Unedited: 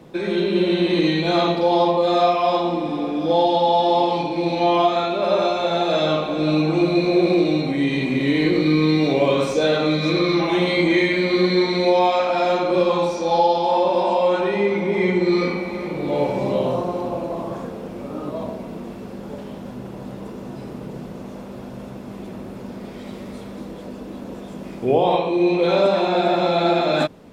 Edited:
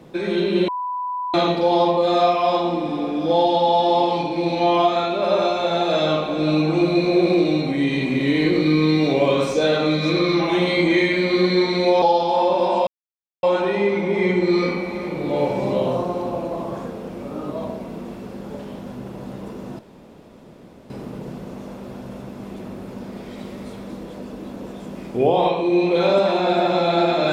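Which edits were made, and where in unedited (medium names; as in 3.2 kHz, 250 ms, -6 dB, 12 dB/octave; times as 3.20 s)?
0.68–1.34 s: bleep 993 Hz -23 dBFS
12.02–13.37 s: delete
14.22 s: insert silence 0.56 s
20.58 s: insert room tone 1.11 s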